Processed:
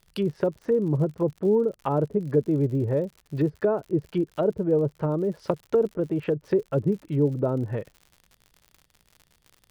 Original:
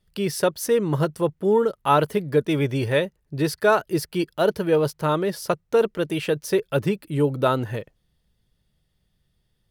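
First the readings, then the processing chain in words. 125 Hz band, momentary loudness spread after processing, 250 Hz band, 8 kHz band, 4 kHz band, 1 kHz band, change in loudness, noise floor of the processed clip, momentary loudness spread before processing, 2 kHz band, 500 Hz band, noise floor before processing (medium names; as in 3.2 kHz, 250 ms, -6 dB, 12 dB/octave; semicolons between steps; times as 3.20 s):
0.0 dB, 5 LU, -0.5 dB, under -20 dB, under -15 dB, -10.5 dB, -3.0 dB, -66 dBFS, 6 LU, -15.5 dB, -3.0 dB, -71 dBFS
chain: low-pass that closes with the level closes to 470 Hz, closed at -20 dBFS; crackle 85 per s -39 dBFS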